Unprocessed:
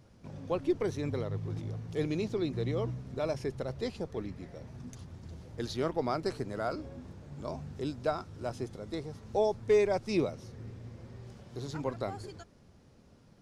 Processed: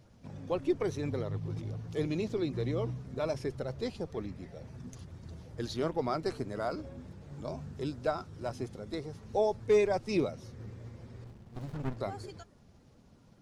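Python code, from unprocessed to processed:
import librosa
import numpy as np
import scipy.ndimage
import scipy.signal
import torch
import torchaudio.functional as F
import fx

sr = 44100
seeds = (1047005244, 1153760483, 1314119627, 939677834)

y = fx.spec_quant(x, sr, step_db=15)
y = fx.running_max(y, sr, window=65, at=(11.24, 11.97))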